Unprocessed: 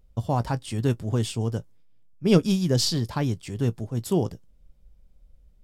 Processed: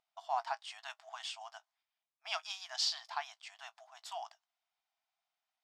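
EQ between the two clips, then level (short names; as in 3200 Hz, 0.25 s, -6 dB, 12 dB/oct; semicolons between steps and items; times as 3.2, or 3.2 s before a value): brick-wall FIR high-pass 640 Hz; air absorption 170 m; high shelf 5000 Hz +9.5 dB; -4.5 dB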